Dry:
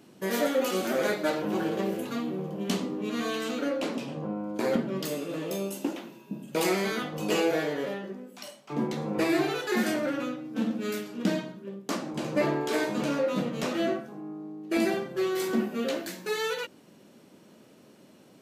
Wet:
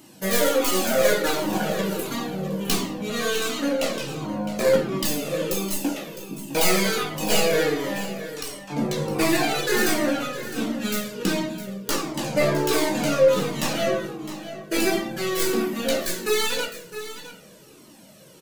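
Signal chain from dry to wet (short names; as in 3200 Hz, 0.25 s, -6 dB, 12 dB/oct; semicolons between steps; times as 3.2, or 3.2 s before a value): tracing distortion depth 0.1 ms; high shelf 4600 Hz +11.5 dB; echo 0.659 s -13 dB; shoebox room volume 130 m³, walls mixed, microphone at 0.57 m; cascading flanger falling 1.4 Hz; gain +8 dB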